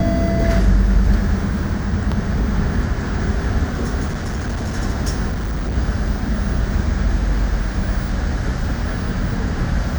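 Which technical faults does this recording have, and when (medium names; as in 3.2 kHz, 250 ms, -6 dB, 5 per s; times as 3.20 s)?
4.07–4.76 s: clipped -19 dBFS
5.28–5.78 s: clipped -18.5 dBFS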